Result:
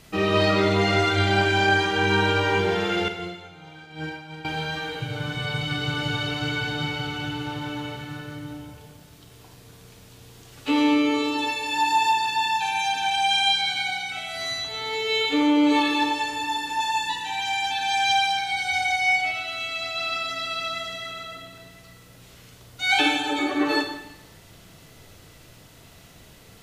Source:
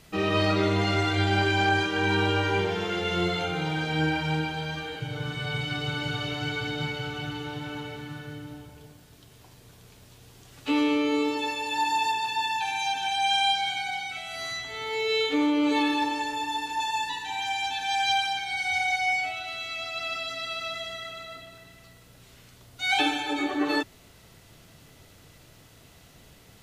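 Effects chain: 3.08–4.45 expander -16 dBFS; Schroeder reverb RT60 0.92 s, combs from 33 ms, DRR 5.5 dB; gain +3 dB

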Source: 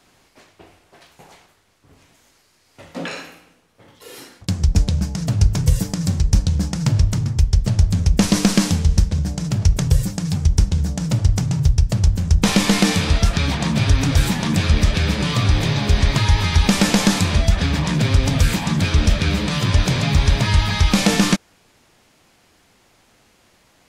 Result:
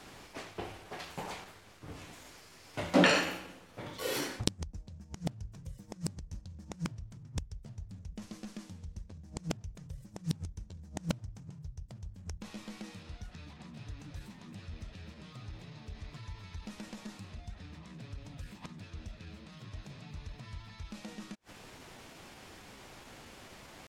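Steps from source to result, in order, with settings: flipped gate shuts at -14 dBFS, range -35 dB; high shelf 5200 Hz -6 dB; pitch shift +1 st; gain +5.5 dB

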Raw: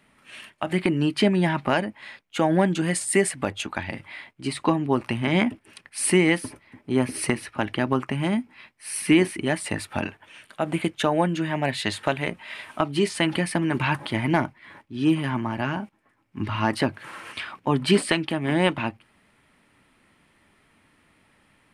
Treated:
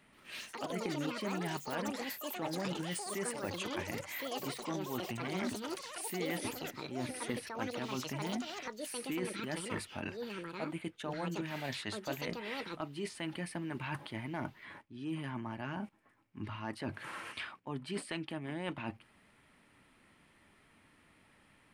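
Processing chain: reverse; compressor 5:1, threshold -34 dBFS, peak gain reduction 18.5 dB; reverse; echoes that change speed 0.13 s, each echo +7 st, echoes 3; gain -4 dB

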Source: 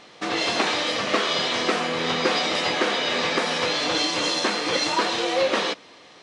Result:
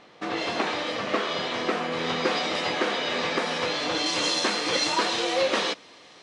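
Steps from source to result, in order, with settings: high shelf 3600 Hz -10.5 dB, from 1.92 s -4.5 dB, from 4.06 s +3.5 dB; gain -2.5 dB

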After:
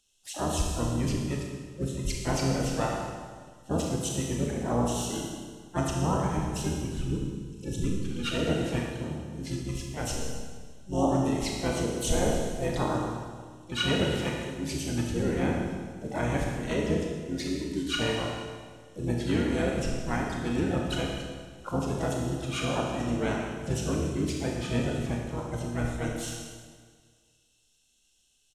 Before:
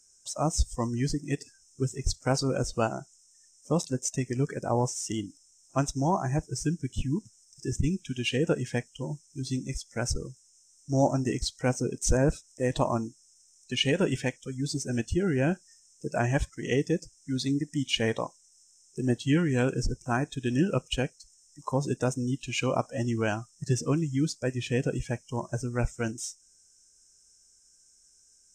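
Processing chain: harmoniser -12 st -4 dB, +5 st -5 dB; Schroeder reverb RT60 1.8 s, combs from 26 ms, DRR -1 dB; mismatched tape noise reduction decoder only; gain -6 dB

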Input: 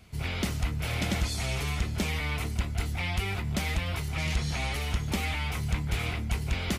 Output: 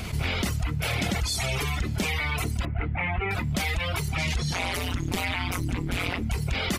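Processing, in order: reverb removal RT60 1.9 s; 2.65–3.31 steep low-pass 2400 Hz 36 dB/oct; 4.53–6.22 AM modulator 180 Hz, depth 95%; fast leveller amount 70%

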